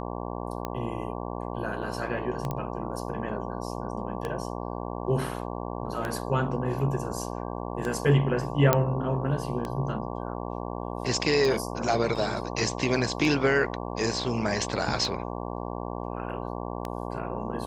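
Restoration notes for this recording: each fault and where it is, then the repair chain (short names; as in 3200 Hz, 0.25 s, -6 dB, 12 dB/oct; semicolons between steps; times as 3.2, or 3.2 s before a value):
buzz 60 Hz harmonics 19 -34 dBFS
tick 33 1/3 rpm -17 dBFS
2.51 pop -18 dBFS
8.73 pop -5 dBFS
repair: de-click; de-hum 60 Hz, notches 19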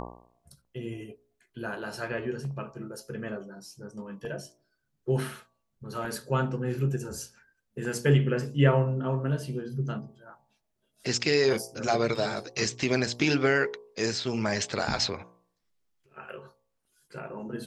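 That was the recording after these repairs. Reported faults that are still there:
none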